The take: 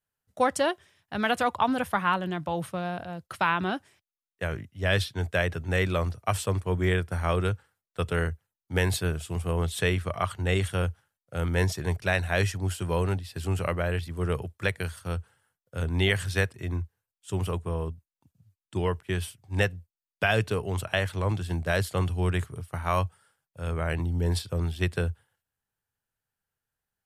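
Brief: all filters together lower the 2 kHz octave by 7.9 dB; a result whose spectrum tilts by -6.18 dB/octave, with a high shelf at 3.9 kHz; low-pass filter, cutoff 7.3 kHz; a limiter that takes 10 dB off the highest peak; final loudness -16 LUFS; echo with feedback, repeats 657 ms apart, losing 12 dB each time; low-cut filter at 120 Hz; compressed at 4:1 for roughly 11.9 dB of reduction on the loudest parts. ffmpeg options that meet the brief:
-af "highpass=120,lowpass=7300,equalizer=f=2000:t=o:g=-8.5,highshelf=f=3900:g=-8.5,acompressor=threshold=0.0178:ratio=4,alimiter=level_in=1.78:limit=0.0631:level=0:latency=1,volume=0.562,aecho=1:1:657|1314|1971:0.251|0.0628|0.0157,volume=17.8"

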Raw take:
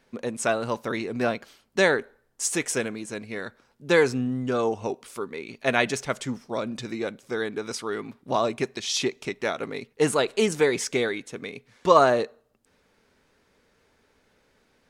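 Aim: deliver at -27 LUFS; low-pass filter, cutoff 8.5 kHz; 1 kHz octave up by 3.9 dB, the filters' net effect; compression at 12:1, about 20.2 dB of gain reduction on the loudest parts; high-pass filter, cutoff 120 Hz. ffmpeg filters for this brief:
-af "highpass=120,lowpass=8500,equalizer=f=1000:t=o:g=5,acompressor=threshold=0.0355:ratio=12,volume=2.51"

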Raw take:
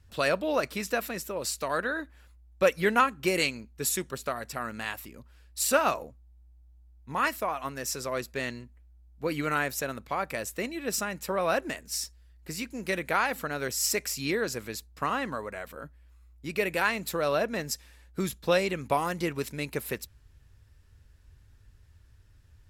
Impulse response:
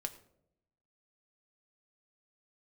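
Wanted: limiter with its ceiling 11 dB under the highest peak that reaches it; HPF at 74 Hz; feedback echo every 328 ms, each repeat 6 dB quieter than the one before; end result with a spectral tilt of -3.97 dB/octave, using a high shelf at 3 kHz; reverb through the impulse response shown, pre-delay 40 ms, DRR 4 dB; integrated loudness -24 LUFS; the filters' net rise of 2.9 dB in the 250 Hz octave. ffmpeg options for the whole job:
-filter_complex "[0:a]highpass=74,equalizer=f=250:t=o:g=4,highshelf=f=3000:g=-3.5,alimiter=limit=0.0891:level=0:latency=1,aecho=1:1:328|656|984|1312|1640|1968:0.501|0.251|0.125|0.0626|0.0313|0.0157,asplit=2[s0][s1];[1:a]atrim=start_sample=2205,adelay=40[s2];[s1][s2]afir=irnorm=-1:irlink=0,volume=0.708[s3];[s0][s3]amix=inputs=2:normalize=0,volume=2.24"

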